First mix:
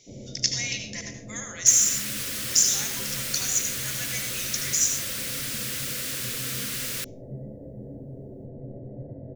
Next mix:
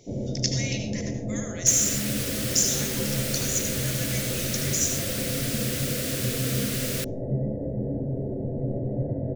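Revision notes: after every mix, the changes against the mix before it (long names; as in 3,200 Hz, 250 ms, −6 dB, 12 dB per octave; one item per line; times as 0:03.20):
speech −3.0 dB
first sound +11.0 dB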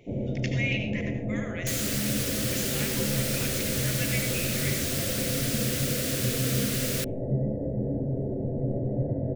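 speech: add high shelf with overshoot 3,700 Hz −13 dB, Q 3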